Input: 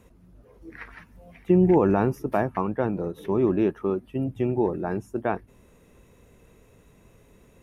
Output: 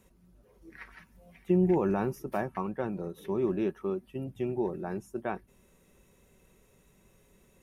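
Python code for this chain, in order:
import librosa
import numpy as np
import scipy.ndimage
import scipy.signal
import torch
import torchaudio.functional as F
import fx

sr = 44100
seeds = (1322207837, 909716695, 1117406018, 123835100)

y = fx.high_shelf(x, sr, hz=3300.0, db=8.0)
y = y + 0.35 * np.pad(y, (int(5.3 * sr / 1000.0), 0))[:len(y)]
y = y * 10.0 ** (-8.5 / 20.0)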